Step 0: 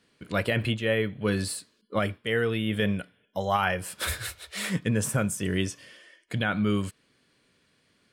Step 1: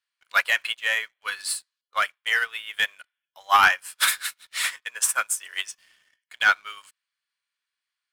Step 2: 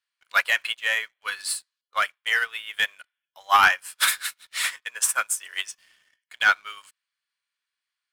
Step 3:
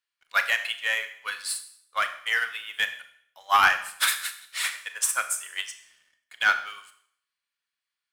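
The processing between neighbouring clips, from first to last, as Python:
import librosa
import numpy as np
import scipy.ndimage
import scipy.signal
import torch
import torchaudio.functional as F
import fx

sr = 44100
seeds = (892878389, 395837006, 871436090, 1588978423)

y1 = scipy.signal.sosfilt(scipy.signal.butter(4, 990.0, 'highpass', fs=sr, output='sos'), x)
y1 = fx.leveller(y1, sr, passes=2)
y1 = fx.upward_expand(y1, sr, threshold_db=-34.0, expansion=2.5)
y1 = F.gain(torch.from_numpy(y1), 7.5).numpy()
y2 = y1
y3 = fx.rev_schroeder(y2, sr, rt60_s=0.62, comb_ms=27, drr_db=9.0)
y3 = F.gain(torch.from_numpy(y3), -2.5).numpy()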